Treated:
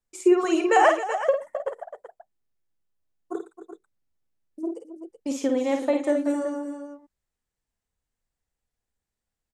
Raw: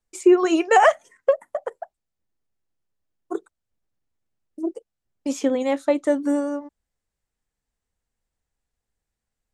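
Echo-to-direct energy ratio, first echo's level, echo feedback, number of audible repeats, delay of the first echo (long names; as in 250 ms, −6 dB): −4.0 dB, −6.0 dB, repeats not evenly spaced, 4, 51 ms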